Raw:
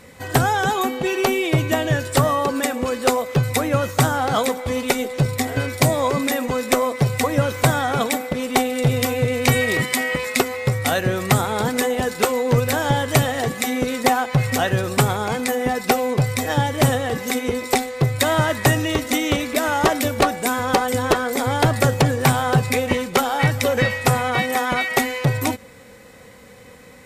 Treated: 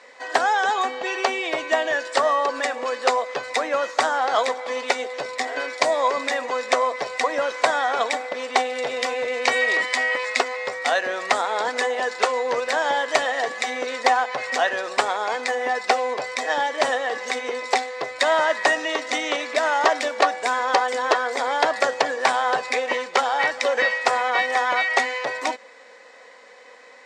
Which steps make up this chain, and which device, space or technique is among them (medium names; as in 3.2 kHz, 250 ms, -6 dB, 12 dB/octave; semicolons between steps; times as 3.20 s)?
phone speaker on a table (cabinet simulation 370–6800 Hz, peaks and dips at 370 Hz -6 dB, 660 Hz +4 dB, 1 kHz +5 dB, 1.8 kHz +6 dB, 4.6 kHz +3 dB); trim -2.5 dB